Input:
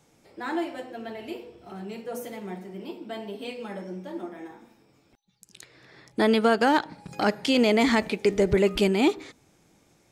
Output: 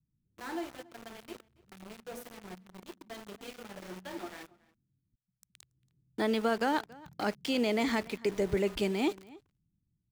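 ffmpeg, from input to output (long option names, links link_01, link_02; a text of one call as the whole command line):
ffmpeg -i in.wav -filter_complex "[0:a]asettb=1/sr,asplit=3[link_01][link_02][link_03];[link_01]atrim=end=3.824[link_04];[link_02]atrim=start=3.82:end=4.43,asetpts=PTS-STARTPTS,afade=type=in:duration=0.004:curve=qsin,afade=type=out:start_time=0.606:duration=0.004:curve=qsin,equalizer=frequency=2200:width=0.42:gain=13[link_05];[link_03]atrim=start=4.426[link_06];[link_04][link_05]acrossfade=duration=0.004:curve1=hsin:curve2=qsin[link_07];[link_07][link_06]acrossfade=duration=0.004:curve1=qsin:curve2=hsin,acrossover=split=180[link_08][link_09];[link_09]aeval=exprs='val(0)*gte(abs(val(0)),0.0188)':channel_layout=same[link_10];[link_08][link_10]amix=inputs=2:normalize=0,asplit=2[link_11][link_12];[link_12]adelay=279.9,volume=-22dB,highshelf=frequency=4000:gain=-6.3[link_13];[link_11][link_13]amix=inputs=2:normalize=0,volume=-8.5dB" out.wav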